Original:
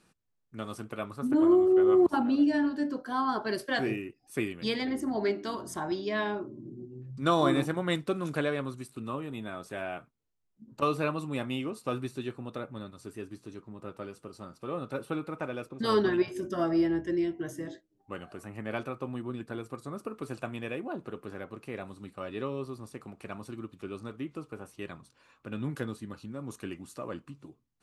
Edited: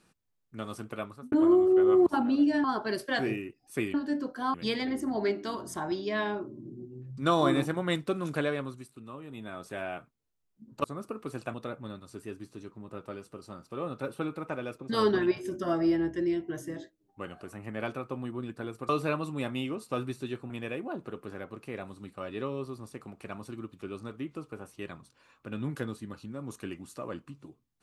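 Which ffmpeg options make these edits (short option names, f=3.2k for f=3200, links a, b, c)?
-filter_complex "[0:a]asplit=11[a][b][c][d][e][f][g][h][i][j][k];[a]atrim=end=1.32,asetpts=PTS-STARTPTS,afade=t=out:st=0.99:d=0.33[l];[b]atrim=start=1.32:end=2.642,asetpts=PTS-STARTPTS,afade=t=in:d=0.004:c=hsin[m];[c]atrim=start=3.238:end=4.542[n];[d]atrim=start=2.638:end=3.242[o];[e]atrim=start=4.538:end=9,asetpts=PTS-STARTPTS,afade=t=out:st=3.962:d=0.5:silence=0.375837[p];[f]atrim=start=9:end=9.17,asetpts=PTS-STARTPTS,volume=-8.5dB[q];[g]atrim=start=9.17:end=10.842,asetpts=PTS-STARTPTS,afade=t=in:d=0.5:silence=0.375837[r];[h]atrim=start=19.798:end=20.502[s];[i]atrim=start=12.448:end=19.802[t];[j]atrim=start=10.838:end=12.452[u];[k]atrim=start=20.498[v];[l][m]concat=n=2:v=0:a=1[w];[w][n]acrossfade=d=0.004:c1=hsin:c2=hsin[x];[x][o]acrossfade=d=0.004:c1=hsin:c2=hsin[y];[p][q][r]concat=n=3:v=0:a=1[z];[y][z]acrossfade=d=0.004:c1=hsin:c2=hsin[aa];[aa][s]acrossfade=d=0.004:c1=hsin:c2=hsin[ab];[ab][t]acrossfade=d=0.004:c1=hsin:c2=hsin[ac];[ac][u]acrossfade=d=0.004:c1=hsin:c2=hsin[ad];[ad][v]acrossfade=d=0.004:c1=hsin:c2=hsin"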